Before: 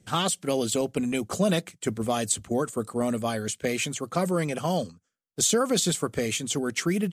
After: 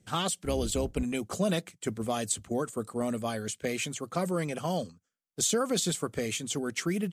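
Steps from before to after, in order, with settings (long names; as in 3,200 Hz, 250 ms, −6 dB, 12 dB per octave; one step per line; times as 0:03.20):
0:00.44–0:01.03: sub-octave generator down 2 octaves, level 0 dB
level −4.5 dB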